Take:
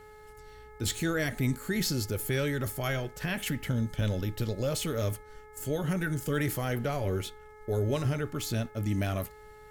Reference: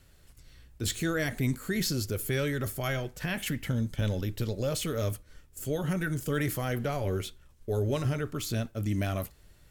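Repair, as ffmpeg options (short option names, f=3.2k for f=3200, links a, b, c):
-af "bandreject=f=426.2:t=h:w=4,bandreject=f=852.4:t=h:w=4,bandreject=f=1.2786k:t=h:w=4,bandreject=f=1.7048k:t=h:w=4,bandreject=f=2.131k:t=h:w=4"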